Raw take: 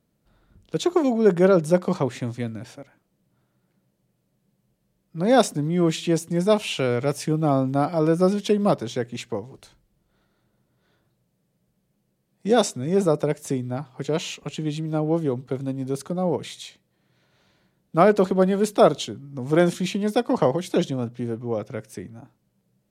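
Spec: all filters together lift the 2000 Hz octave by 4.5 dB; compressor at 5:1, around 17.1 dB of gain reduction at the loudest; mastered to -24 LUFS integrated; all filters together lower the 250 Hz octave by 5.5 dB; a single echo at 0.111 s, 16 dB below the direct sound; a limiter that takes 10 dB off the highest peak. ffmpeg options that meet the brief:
-af "equalizer=f=250:t=o:g=-8.5,equalizer=f=2k:t=o:g=6.5,acompressor=threshold=-32dB:ratio=5,alimiter=level_in=5dB:limit=-24dB:level=0:latency=1,volume=-5dB,aecho=1:1:111:0.158,volume=15dB"

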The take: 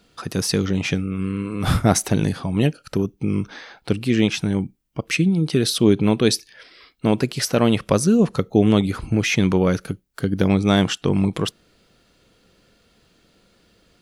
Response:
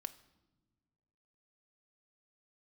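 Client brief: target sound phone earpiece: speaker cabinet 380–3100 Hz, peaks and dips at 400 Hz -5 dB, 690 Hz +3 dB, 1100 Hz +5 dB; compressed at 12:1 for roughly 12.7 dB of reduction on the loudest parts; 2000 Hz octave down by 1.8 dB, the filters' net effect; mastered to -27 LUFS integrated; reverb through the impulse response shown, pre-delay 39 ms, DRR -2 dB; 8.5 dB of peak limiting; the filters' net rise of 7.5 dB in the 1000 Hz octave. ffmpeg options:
-filter_complex "[0:a]equalizer=f=1k:t=o:g=7.5,equalizer=f=2k:t=o:g=-4.5,acompressor=threshold=-22dB:ratio=12,alimiter=limit=-18.5dB:level=0:latency=1,asplit=2[a][b];[1:a]atrim=start_sample=2205,adelay=39[c];[b][c]afir=irnorm=-1:irlink=0,volume=5dB[d];[a][d]amix=inputs=2:normalize=0,highpass=380,equalizer=f=400:t=q:w=4:g=-5,equalizer=f=690:t=q:w=4:g=3,equalizer=f=1.1k:t=q:w=4:g=5,lowpass=f=3.1k:w=0.5412,lowpass=f=3.1k:w=1.3066,volume=4.5dB"

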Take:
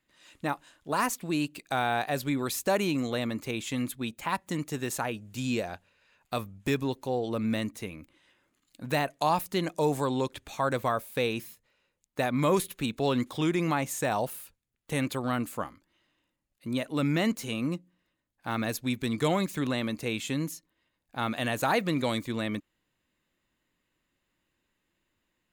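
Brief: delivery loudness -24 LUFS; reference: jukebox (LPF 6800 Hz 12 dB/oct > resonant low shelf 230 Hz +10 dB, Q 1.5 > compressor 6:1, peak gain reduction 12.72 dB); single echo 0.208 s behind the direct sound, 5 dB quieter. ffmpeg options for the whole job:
-af "lowpass=6.8k,lowshelf=f=230:t=q:w=1.5:g=10,aecho=1:1:208:0.562,acompressor=threshold=-28dB:ratio=6,volume=9dB"

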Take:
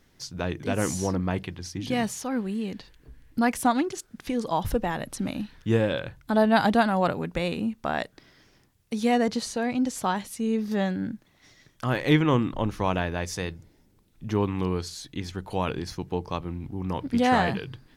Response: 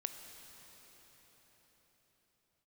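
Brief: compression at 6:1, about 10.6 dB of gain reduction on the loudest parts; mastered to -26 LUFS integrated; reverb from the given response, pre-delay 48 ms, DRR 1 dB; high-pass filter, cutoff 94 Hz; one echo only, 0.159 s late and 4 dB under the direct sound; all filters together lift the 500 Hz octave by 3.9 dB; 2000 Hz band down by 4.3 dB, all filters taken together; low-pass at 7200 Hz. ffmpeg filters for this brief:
-filter_complex "[0:a]highpass=94,lowpass=7.2k,equalizer=f=500:t=o:g=5,equalizer=f=2k:t=o:g=-6,acompressor=threshold=-26dB:ratio=6,aecho=1:1:159:0.631,asplit=2[a][b];[1:a]atrim=start_sample=2205,adelay=48[c];[b][c]afir=irnorm=-1:irlink=0,volume=0dB[d];[a][d]amix=inputs=2:normalize=0,volume=2.5dB"

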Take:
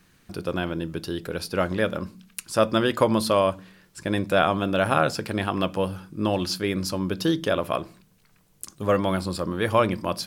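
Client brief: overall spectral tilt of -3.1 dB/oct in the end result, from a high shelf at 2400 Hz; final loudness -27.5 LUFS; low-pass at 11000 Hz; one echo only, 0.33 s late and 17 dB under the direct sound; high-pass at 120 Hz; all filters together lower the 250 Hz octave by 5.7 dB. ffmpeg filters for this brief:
-af "highpass=120,lowpass=11k,equalizer=f=250:t=o:g=-8,highshelf=f=2.4k:g=8,aecho=1:1:330:0.141,volume=-2.5dB"

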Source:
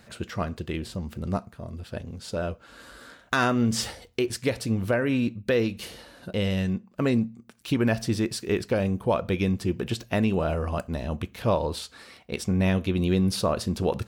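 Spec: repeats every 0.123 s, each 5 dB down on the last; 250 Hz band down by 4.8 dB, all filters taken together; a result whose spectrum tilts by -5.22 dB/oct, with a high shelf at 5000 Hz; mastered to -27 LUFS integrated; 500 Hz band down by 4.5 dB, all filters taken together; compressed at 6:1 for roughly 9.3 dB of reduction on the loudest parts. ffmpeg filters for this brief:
-af "equalizer=f=250:t=o:g=-5.5,equalizer=f=500:t=o:g=-4,highshelf=f=5k:g=-7.5,acompressor=threshold=-32dB:ratio=6,aecho=1:1:123|246|369|492|615|738|861:0.562|0.315|0.176|0.0988|0.0553|0.031|0.0173,volume=9.5dB"

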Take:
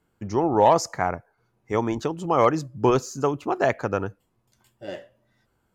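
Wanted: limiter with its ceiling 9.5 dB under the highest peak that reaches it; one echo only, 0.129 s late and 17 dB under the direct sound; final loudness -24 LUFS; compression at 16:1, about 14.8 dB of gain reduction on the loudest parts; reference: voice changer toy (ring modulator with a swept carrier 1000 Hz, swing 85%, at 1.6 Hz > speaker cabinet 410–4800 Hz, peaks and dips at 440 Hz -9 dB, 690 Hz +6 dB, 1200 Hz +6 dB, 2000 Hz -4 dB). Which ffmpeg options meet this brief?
-af "acompressor=threshold=-27dB:ratio=16,alimiter=level_in=0.5dB:limit=-24dB:level=0:latency=1,volume=-0.5dB,aecho=1:1:129:0.141,aeval=exprs='val(0)*sin(2*PI*1000*n/s+1000*0.85/1.6*sin(2*PI*1.6*n/s))':c=same,highpass=410,equalizer=f=440:t=q:w=4:g=-9,equalizer=f=690:t=q:w=4:g=6,equalizer=f=1.2k:t=q:w=4:g=6,equalizer=f=2k:t=q:w=4:g=-4,lowpass=f=4.8k:w=0.5412,lowpass=f=4.8k:w=1.3066,volume=14dB"

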